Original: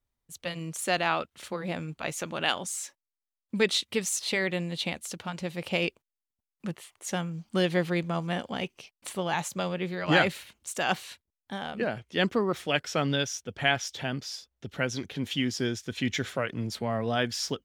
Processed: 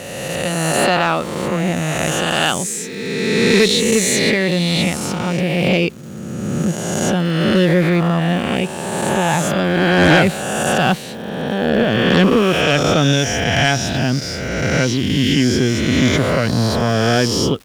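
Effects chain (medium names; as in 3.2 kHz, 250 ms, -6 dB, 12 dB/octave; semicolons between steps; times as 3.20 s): reverse spectral sustain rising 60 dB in 2.09 s; bass shelf 330 Hz +10.5 dB; Chebyshev shaper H 5 -11 dB, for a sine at -1 dBFS; crackle 460 per s -33 dBFS; trim -1 dB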